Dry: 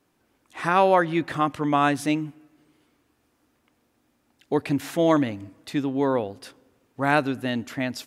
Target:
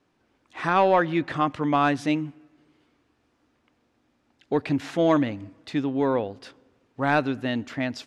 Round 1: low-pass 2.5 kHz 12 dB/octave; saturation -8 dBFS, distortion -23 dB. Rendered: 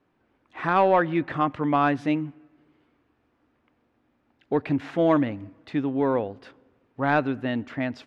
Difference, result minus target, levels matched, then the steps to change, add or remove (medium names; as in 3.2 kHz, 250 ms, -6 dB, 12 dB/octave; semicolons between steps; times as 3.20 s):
4 kHz band -5.0 dB
change: low-pass 5.4 kHz 12 dB/octave